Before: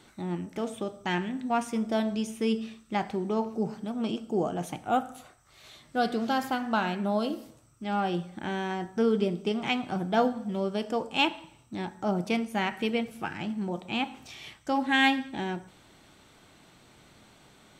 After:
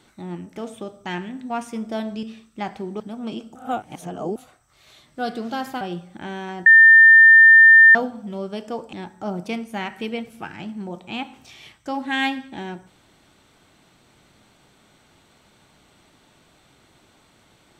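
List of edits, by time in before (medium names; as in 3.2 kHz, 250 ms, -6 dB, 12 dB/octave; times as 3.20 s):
2.23–2.57 s: delete
3.34–3.77 s: delete
4.32–5.13 s: reverse
6.58–8.03 s: delete
8.88–10.17 s: bleep 1.8 kHz -6 dBFS
11.15–11.74 s: delete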